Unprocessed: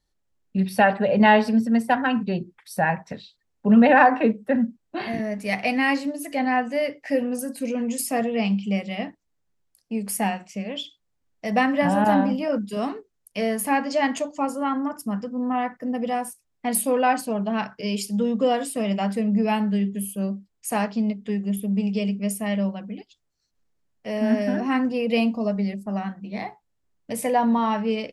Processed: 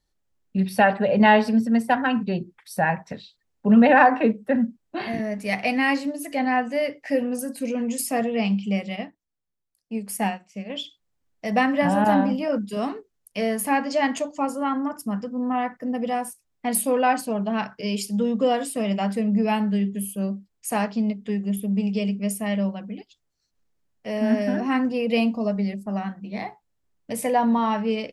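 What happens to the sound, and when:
0:08.96–0:10.70: expander for the loud parts, over −42 dBFS

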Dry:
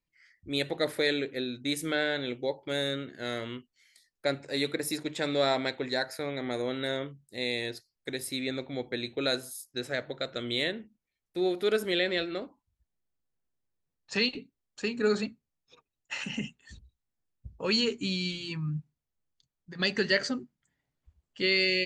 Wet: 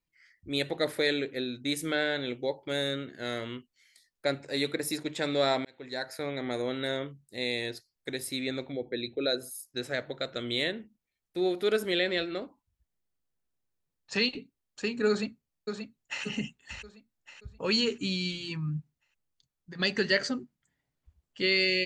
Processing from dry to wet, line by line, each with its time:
0:05.65–0:06.24: fade in
0:08.72–0:09.65: spectral envelope exaggerated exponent 1.5
0:15.09–0:16.24: delay throw 580 ms, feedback 40%, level −7 dB

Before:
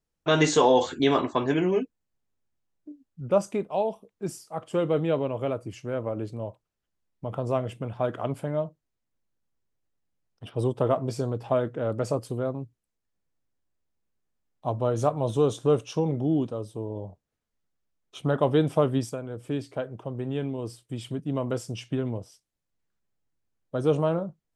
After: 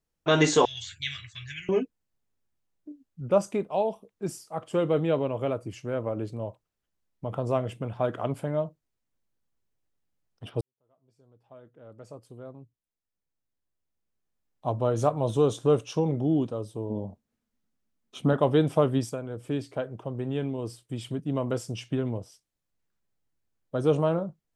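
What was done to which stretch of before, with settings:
0:00.65–0:01.69: elliptic band-stop filter 110–2,000 Hz
0:10.61–0:14.72: fade in quadratic
0:16.90–0:18.33: parametric band 230 Hz +14.5 dB 0.43 octaves

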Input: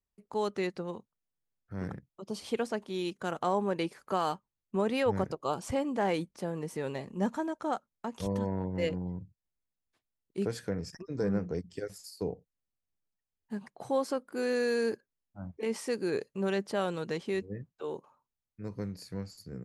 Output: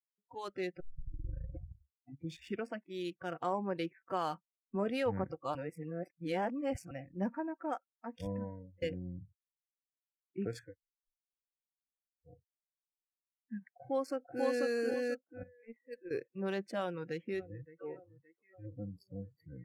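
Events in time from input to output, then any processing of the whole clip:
0:00.80: tape start 1.93 s
0:04.30–0:04.89: double-tracking delay 25 ms −13 dB
0:05.55–0:06.91: reverse
0:08.26–0:08.82: fade out
0:10.67–0:12.32: fill with room tone, crossfade 0.16 s
0:13.75–0:14.65: delay throw 490 ms, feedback 35%, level −1 dB
0:15.43–0:16.11: noise gate −29 dBFS, range −15 dB
0:16.82–0:17.85: delay throw 570 ms, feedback 75%, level −15.5 dB
0:18.66–0:19.23: Butterworth band-reject 2,100 Hz, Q 0.78
whole clip: adaptive Wiener filter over 9 samples; noise reduction from a noise print of the clip's start 30 dB; level −4.5 dB

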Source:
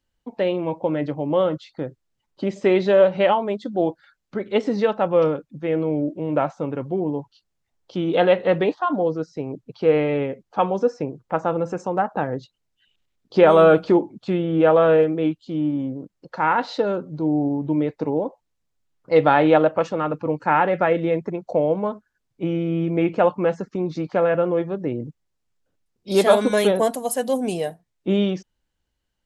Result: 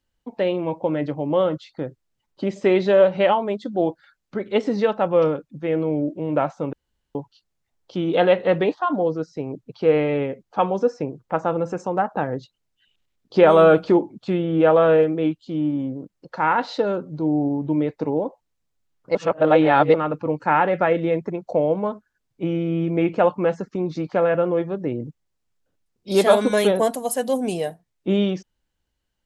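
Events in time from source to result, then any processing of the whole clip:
0:06.73–0:07.15: fill with room tone
0:19.15–0:19.94: reverse

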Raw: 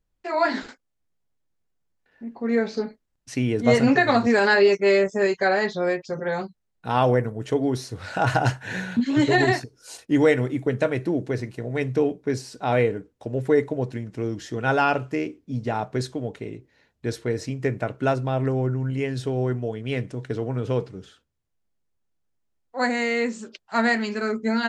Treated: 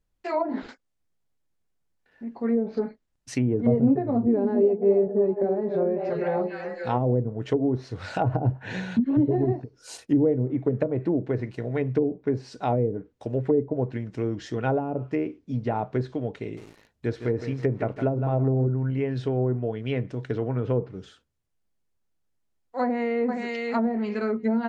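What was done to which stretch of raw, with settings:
0:04.00–0:07.13: echo through a band-pass that steps 272 ms, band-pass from 280 Hz, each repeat 0.7 octaves, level −4 dB
0:16.41–0:18.67: feedback echo at a low word length 160 ms, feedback 35%, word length 7 bits, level −10 dB
0:22.81–0:23.43: delay throw 470 ms, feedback 15%, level −6 dB
whole clip: dynamic equaliser 1,600 Hz, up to −7 dB, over −39 dBFS, Q 2; treble cut that deepens with the level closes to 400 Hz, closed at −17.5 dBFS

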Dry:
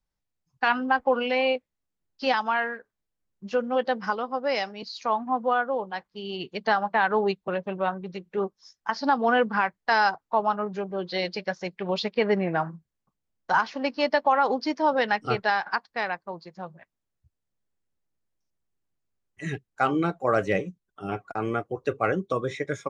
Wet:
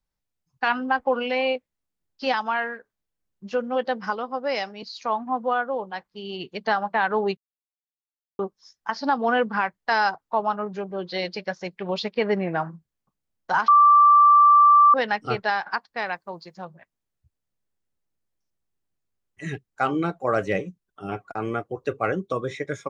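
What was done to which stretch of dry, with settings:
0:07.37–0:08.39: silence
0:13.68–0:14.94: beep over 1,170 Hz −10.5 dBFS
0:16.08–0:16.65: high-shelf EQ 3,400 Hz +8 dB

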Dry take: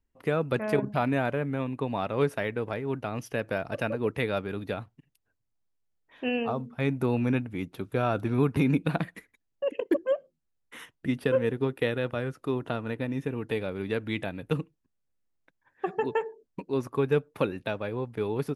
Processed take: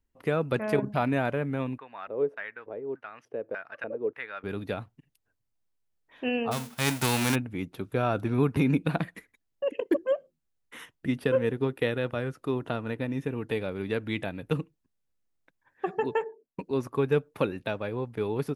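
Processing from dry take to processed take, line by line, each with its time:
0:01.78–0:04.44: auto-filter band-pass square 1.7 Hz 450–1,600 Hz
0:06.51–0:07.34: spectral envelope flattened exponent 0.3
0:16.24–0:16.71: multiband upward and downward expander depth 70%

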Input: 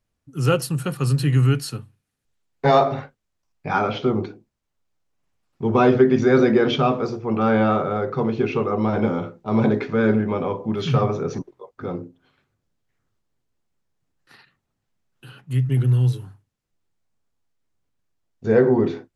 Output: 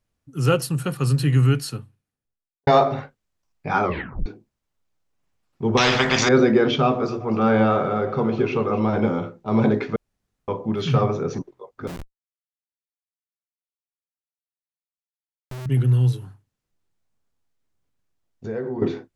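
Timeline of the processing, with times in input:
0:01.64–0:02.67: fade out and dull
0:03.84: tape stop 0.42 s
0:05.77–0:06.29: every bin compressed towards the loudest bin 4 to 1
0:06.82–0:08.84: delay that swaps between a low-pass and a high-pass 127 ms, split 1,000 Hz, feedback 66%, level −11 dB
0:09.96–0:10.48: fill with room tone
0:11.87–0:15.66: comparator with hysteresis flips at −27 dBFS
0:16.16–0:18.82: downward compressor 2.5 to 1, threshold −31 dBFS

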